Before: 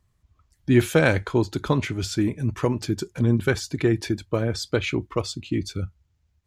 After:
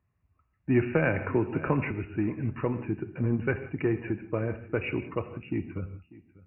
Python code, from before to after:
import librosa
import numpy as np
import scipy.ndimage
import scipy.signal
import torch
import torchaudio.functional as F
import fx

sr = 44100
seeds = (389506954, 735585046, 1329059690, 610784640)

p1 = scipy.signal.sosfilt(scipy.signal.butter(2, 73.0, 'highpass', fs=sr, output='sos'), x)
p2 = np.clip(p1, -10.0 ** (-19.5 / 20.0), 10.0 ** (-19.5 / 20.0))
p3 = p1 + F.gain(torch.from_numpy(p2), -10.5).numpy()
p4 = fx.brickwall_lowpass(p3, sr, high_hz=2900.0)
p5 = p4 + 10.0 ** (-20.5 / 20.0) * np.pad(p4, (int(594 * sr / 1000.0), 0))[:len(p4)]
p6 = fx.rev_gated(p5, sr, seeds[0], gate_ms=200, shape='flat', drr_db=10.5)
p7 = fx.band_squash(p6, sr, depth_pct=70, at=(0.94, 1.91))
y = F.gain(torch.from_numpy(p7), -7.5).numpy()